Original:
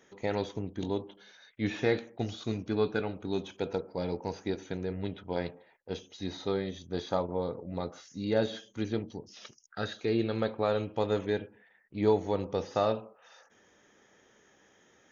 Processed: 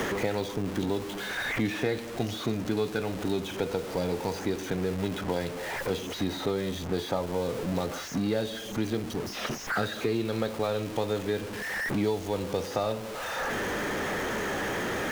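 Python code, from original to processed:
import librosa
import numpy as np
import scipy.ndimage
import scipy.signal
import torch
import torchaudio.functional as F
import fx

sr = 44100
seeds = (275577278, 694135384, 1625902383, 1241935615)

y = x + 0.5 * 10.0 ** (-36.0 / 20.0) * np.sign(x)
y = fx.band_squash(y, sr, depth_pct=100)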